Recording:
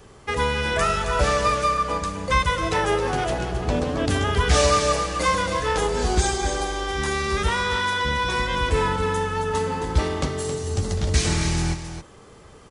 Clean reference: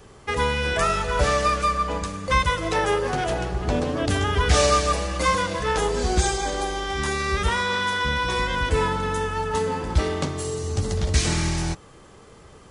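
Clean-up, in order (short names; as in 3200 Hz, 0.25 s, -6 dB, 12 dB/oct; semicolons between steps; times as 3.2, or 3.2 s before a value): inverse comb 0.269 s -9 dB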